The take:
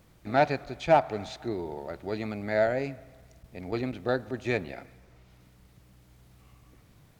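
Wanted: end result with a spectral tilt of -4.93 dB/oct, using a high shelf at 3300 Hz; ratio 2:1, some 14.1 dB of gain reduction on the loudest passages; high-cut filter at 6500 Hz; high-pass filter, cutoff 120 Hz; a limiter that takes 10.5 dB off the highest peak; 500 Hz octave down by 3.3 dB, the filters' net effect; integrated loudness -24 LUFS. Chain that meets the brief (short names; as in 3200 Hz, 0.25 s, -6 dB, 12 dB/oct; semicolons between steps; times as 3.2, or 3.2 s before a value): HPF 120 Hz; LPF 6500 Hz; bell 500 Hz -5 dB; high shelf 3300 Hz +8 dB; compressor 2:1, threshold -44 dBFS; gain +22 dB; limiter -12 dBFS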